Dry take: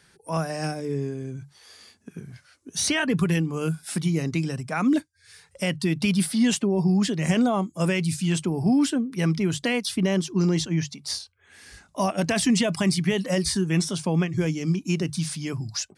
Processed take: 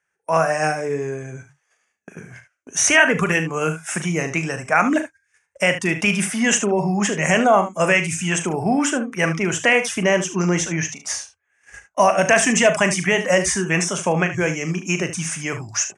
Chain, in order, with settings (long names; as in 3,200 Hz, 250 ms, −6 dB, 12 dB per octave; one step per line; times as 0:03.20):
noise gate −45 dBFS, range −27 dB
drawn EQ curve 280 Hz 0 dB, 640 Hz +13 dB, 990 Hz +11 dB, 1,700 Hz +15 dB, 2,700 Hz +11 dB, 4,300 Hz −11 dB, 6,300 Hz +14 dB, 13,000 Hz −4 dB
on a send: ambience of single reflections 39 ms −10.5 dB, 74 ms −12 dB
on the sum: level −1 dB